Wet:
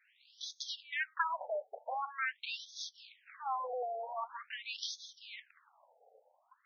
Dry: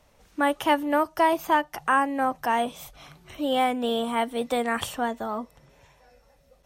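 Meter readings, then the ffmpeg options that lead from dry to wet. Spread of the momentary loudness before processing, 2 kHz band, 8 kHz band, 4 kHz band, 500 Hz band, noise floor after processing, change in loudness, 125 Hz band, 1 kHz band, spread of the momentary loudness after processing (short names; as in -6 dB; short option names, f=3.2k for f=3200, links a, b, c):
10 LU, -10.5 dB, -8.5 dB, -8.0 dB, -16.5 dB, -73 dBFS, -14.0 dB, under -40 dB, -15.0 dB, 12 LU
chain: -filter_complex "[0:a]highshelf=f=5.9k:t=q:w=1.5:g=13.5,bandreject=f=580:w=16,asplit=2[a][b];[b]acompressor=threshold=-32dB:ratio=8,volume=2dB[c];[a][c]amix=inputs=2:normalize=0,aeval=exprs='abs(val(0))':c=same,afftfilt=real='re*between(b*sr/1024,580*pow(4700/580,0.5+0.5*sin(2*PI*0.45*pts/sr))/1.41,580*pow(4700/580,0.5+0.5*sin(2*PI*0.45*pts/sr))*1.41)':imag='im*between(b*sr/1024,580*pow(4700/580,0.5+0.5*sin(2*PI*0.45*pts/sr))/1.41,580*pow(4700/580,0.5+0.5*sin(2*PI*0.45*pts/sr))*1.41)':win_size=1024:overlap=0.75,volume=-4.5dB"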